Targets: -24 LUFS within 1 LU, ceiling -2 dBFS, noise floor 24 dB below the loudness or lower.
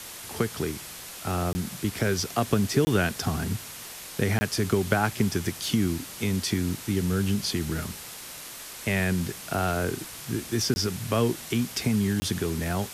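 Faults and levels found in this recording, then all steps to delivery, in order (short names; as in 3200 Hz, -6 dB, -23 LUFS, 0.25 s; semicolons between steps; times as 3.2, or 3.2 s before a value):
dropouts 5; longest dropout 20 ms; noise floor -41 dBFS; noise floor target -52 dBFS; loudness -27.5 LUFS; peak -7.5 dBFS; loudness target -24.0 LUFS
-> interpolate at 1.53/2.85/4.39/10.74/12.2, 20 ms; noise print and reduce 11 dB; gain +3.5 dB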